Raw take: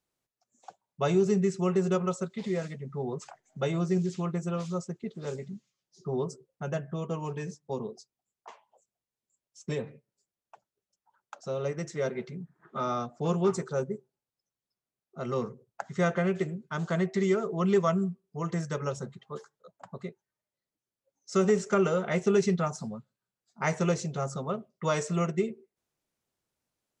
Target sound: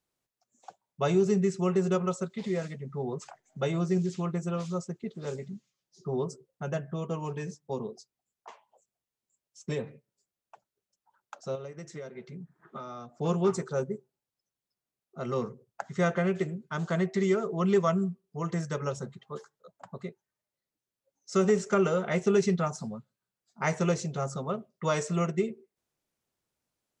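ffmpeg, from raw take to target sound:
ffmpeg -i in.wav -filter_complex "[0:a]asettb=1/sr,asplit=3[link_01][link_02][link_03];[link_01]atrim=end=11.554[link_04];[link_02]atrim=start=11.55:end=13.19,asetpts=PTS-STARTPTS,afade=type=in:duration=0.004:curve=qsin,afade=type=out:start_time=1.636:duration=0.004:curve=qsin,acompressor=threshold=-38dB:ratio=12[link_05];[link_03]atrim=start=13.186[link_06];[link_04][link_05]acrossfade=duration=0.004:curve1=hsin:curve2=qsin[link_07];[link_07][link_06]acrossfade=duration=0.004:curve1=qsin:curve2=hsin" out.wav

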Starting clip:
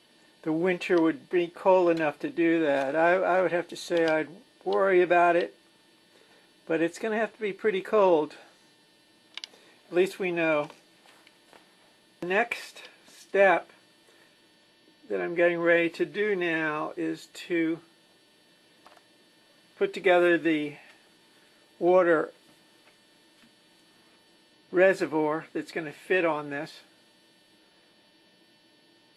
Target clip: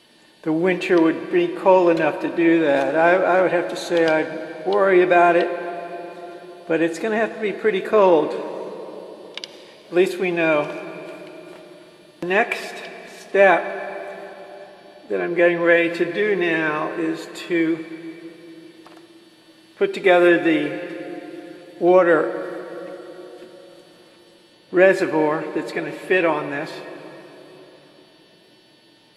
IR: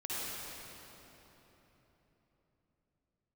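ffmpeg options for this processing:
-filter_complex "[0:a]asplit=2[link_01][link_02];[1:a]atrim=start_sample=2205,lowpass=7600[link_03];[link_02][link_03]afir=irnorm=-1:irlink=0,volume=-14dB[link_04];[link_01][link_04]amix=inputs=2:normalize=0,volume=6dB"

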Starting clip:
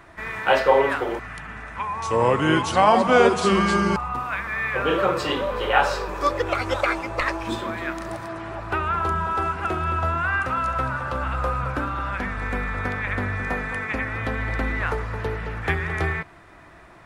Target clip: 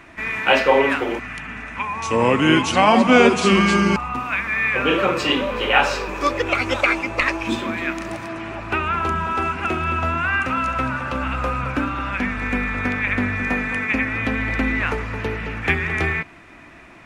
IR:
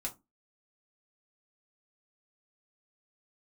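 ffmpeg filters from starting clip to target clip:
-af "equalizer=frequency=250:width_type=o:width=0.67:gain=10,equalizer=frequency=2500:width_type=o:width=0.67:gain=11,equalizer=frequency=6300:width_type=o:width=0.67:gain=5"

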